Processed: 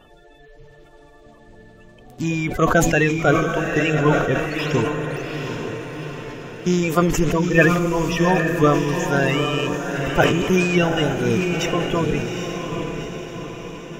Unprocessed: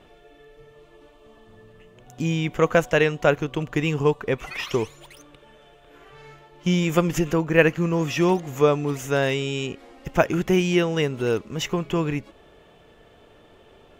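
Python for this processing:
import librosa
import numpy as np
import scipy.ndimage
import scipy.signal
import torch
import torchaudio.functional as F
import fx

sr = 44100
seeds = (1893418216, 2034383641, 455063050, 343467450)

p1 = fx.spec_quant(x, sr, step_db=30)
p2 = fx.low_shelf(p1, sr, hz=62.0, db=7.0)
p3 = p2 + fx.echo_diffused(p2, sr, ms=818, feedback_pct=53, wet_db=-5, dry=0)
p4 = fx.sustainer(p3, sr, db_per_s=51.0)
y = p4 * librosa.db_to_amplitude(1.5)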